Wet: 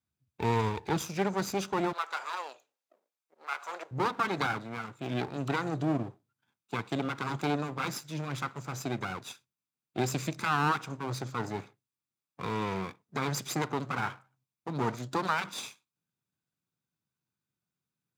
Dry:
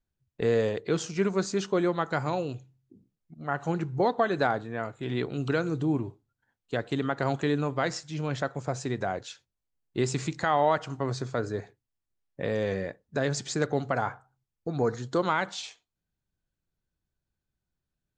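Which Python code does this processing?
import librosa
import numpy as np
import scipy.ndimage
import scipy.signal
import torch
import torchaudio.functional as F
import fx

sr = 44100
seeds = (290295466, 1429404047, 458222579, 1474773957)

y = fx.lower_of_two(x, sr, delay_ms=0.81)
y = fx.highpass(y, sr, hz=fx.steps((0.0, 78.0), (1.93, 530.0), (3.91, 120.0)), slope=24)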